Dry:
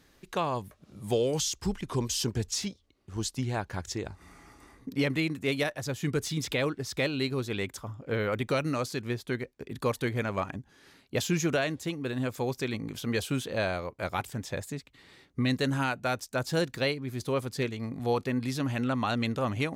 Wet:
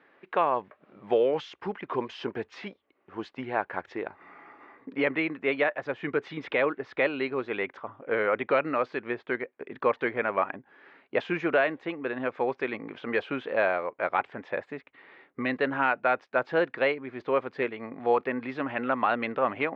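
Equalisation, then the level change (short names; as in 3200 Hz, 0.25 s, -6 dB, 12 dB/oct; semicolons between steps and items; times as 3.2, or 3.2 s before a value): HPF 430 Hz 12 dB/oct; LPF 2300 Hz 24 dB/oct; +6.5 dB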